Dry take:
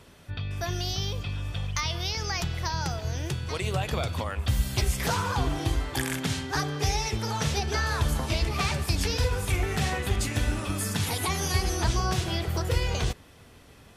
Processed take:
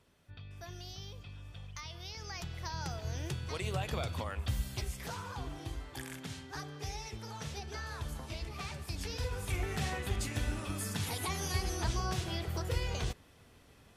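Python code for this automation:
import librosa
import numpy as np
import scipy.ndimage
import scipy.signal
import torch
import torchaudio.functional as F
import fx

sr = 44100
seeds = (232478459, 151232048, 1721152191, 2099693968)

y = fx.gain(x, sr, db=fx.line((1.9, -16.0), (3.12, -7.0), (4.38, -7.0), (5.01, -14.5), (8.79, -14.5), (9.62, -8.0)))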